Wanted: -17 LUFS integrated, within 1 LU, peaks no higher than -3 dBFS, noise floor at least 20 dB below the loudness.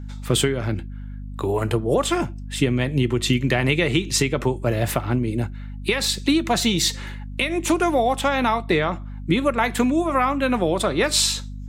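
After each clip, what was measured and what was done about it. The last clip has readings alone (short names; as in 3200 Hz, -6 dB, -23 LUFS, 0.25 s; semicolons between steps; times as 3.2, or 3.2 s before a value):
hum 50 Hz; harmonics up to 250 Hz; hum level -30 dBFS; loudness -21.5 LUFS; peak -6.5 dBFS; loudness target -17.0 LUFS
-> notches 50/100/150/200/250 Hz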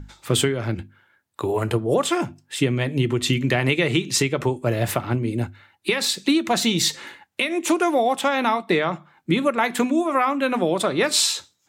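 hum none; loudness -22.0 LUFS; peak -7.0 dBFS; loudness target -17.0 LUFS
-> gain +5 dB; limiter -3 dBFS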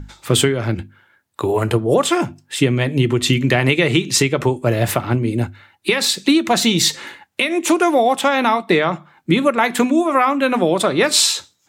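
loudness -17.0 LUFS; peak -3.0 dBFS; noise floor -62 dBFS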